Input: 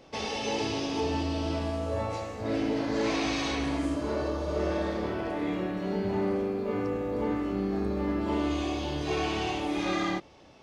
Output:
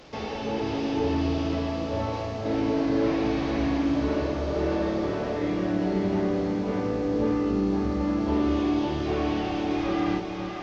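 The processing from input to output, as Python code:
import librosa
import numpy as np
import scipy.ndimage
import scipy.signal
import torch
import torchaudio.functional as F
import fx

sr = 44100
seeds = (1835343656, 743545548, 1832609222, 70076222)

y = fx.delta_mod(x, sr, bps=32000, step_db=-44.5)
y = fx.low_shelf(y, sr, hz=460.0, db=4.0)
y = fx.echo_split(y, sr, split_hz=460.0, low_ms=309, high_ms=542, feedback_pct=52, wet_db=-5)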